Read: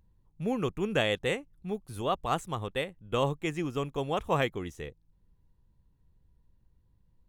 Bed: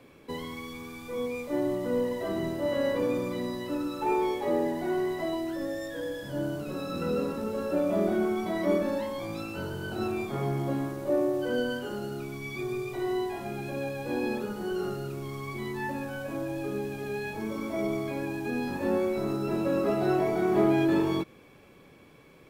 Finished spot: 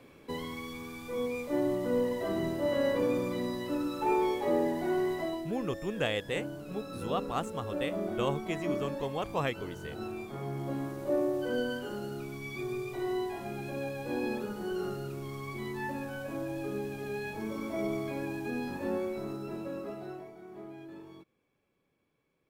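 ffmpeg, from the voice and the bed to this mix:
ffmpeg -i stem1.wav -i stem2.wav -filter_complex "[0:a]adelay=5050,volume=-4dB[link_01];[1:a]volume=4dB,afade=type=out:start_time=5.14:duration=0.34:silence=0.446684,afade=type=in:start_time=10.44:duration=0.58:silence=0.562341,afade=type=out:start_time=18.32:duration=2.02:silence=0.1[link_02];[link_01][link_02]amix=inputs=2:normalize=0" out.wav

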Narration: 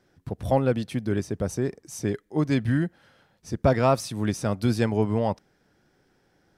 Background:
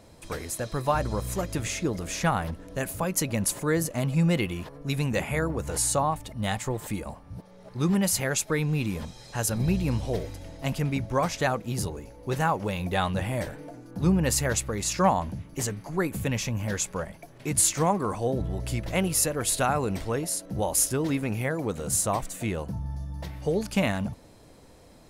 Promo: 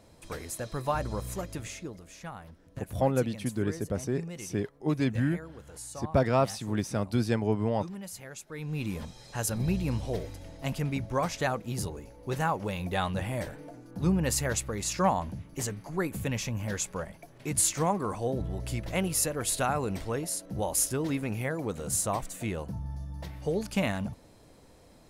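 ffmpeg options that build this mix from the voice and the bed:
ffmpeg -i stem1.wav -i stem2.wav -filter_complex "[0:a]adelay=2500,volume=-4dB[link_01];[1:a]volume=9dB,afade=type=out:start_time=1.22:duration=0.84:silence=0.237137,afade=type=in:start_time=8.51:duration=0.4:silence=0.211349[link_02];[link_01][link_02]amix=inputs=2:normalize=0" out.wav

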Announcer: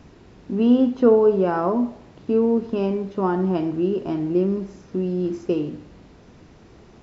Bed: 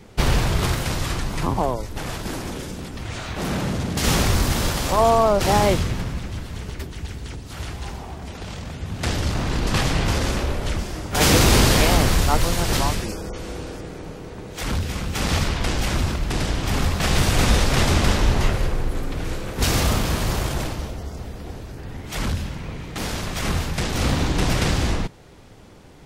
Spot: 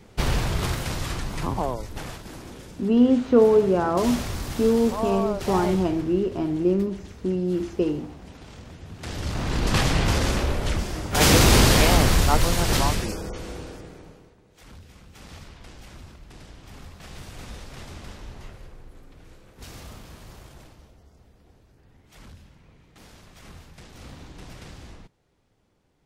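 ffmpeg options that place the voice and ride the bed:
ffmpeg -i stem1.wav -i stem2.wav -filter_complex "[0:a]adelay=2300,volume=-1dB[link_01];[1:a]volume=6.5dB,afade=type=out:start_time=1.99:duration=0.24:silence=0.446684,afade=type=in:start_time=9.06:duration=0.62:silence=0.281838,afade=type=out:start_time=13.05:duration=1.32:silence=0.0841395[link_02];[link_01][link_02]amix=inputs=2:normalize=0" out.wav

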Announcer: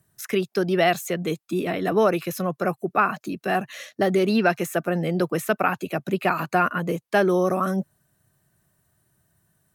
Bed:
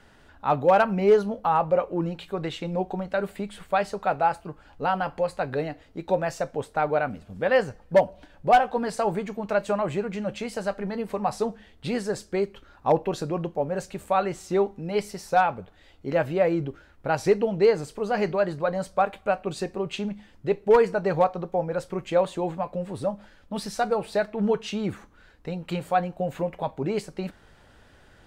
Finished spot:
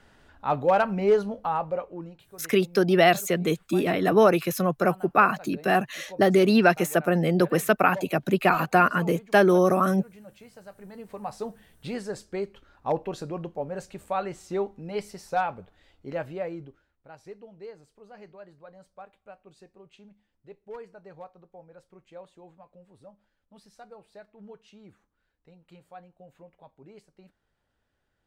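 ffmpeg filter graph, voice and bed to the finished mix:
ffmpeg -i stem1.wav -i stem2.wav -filter_complex "[0:a]adelay=2200,volume=1.5dB[link_01];[1:a]volume=10dB,afade=type=out:start_time=1.23:duration=1:silence=0.16788,afade=type=in:start_time=10.7:duration=0.97:silence=0.237137,afade=type=out:start_time=15.81:duration=1.19:silence=0.133352[link_02];[link_01][link_02]amix=inputs=2:normalize=0" out.wav

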